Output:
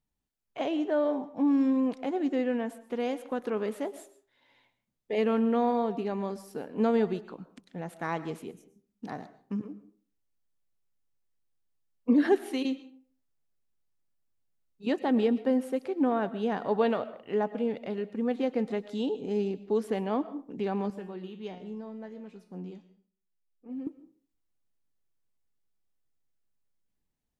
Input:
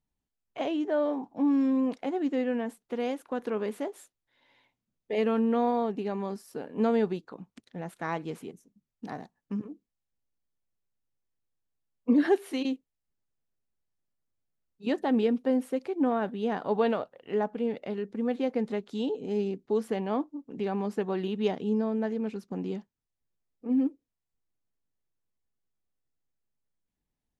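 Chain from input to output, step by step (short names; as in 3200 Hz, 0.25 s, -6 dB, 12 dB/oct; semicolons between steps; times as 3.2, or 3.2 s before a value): 20.9–23.87 resonator 180 Hz, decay 0.44 s, harmonics all, mix 80%; digital reverb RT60 0.46 s, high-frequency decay 0.65×, pre-delay 80 ms, DRR 15 dB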